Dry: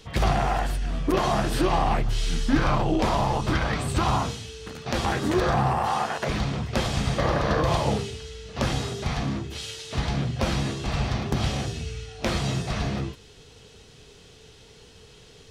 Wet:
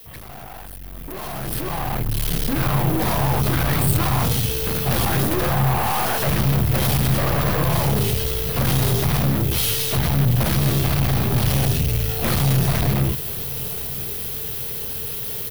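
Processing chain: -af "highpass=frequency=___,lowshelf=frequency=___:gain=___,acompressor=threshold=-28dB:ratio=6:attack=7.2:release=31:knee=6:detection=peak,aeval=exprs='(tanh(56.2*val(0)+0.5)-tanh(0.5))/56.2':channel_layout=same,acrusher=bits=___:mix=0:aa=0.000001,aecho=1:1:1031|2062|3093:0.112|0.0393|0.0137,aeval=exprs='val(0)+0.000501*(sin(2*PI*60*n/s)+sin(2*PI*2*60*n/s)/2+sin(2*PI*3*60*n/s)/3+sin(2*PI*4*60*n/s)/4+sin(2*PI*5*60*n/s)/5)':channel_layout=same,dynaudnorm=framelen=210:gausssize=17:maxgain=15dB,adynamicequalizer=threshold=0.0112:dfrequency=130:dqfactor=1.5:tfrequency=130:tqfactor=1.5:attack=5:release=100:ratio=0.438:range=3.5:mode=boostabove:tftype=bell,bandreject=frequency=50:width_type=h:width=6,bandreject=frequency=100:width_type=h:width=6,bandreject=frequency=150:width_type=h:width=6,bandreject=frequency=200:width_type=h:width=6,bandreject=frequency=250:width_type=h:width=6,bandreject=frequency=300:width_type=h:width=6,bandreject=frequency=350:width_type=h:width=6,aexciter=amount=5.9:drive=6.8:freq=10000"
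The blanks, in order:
50, 93, 5.5, 8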